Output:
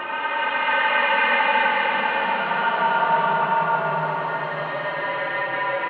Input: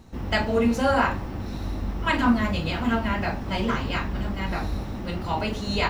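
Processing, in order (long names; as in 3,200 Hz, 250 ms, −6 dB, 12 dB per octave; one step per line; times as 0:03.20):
single-sideband voice off tune −80 Hz 470–3,300 Hz
far-end echo of a speakerphone 230 ms, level −29 dB
extreme stretch with random phases 13×, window 0.25 s, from 0:02.01
level +4.5 dB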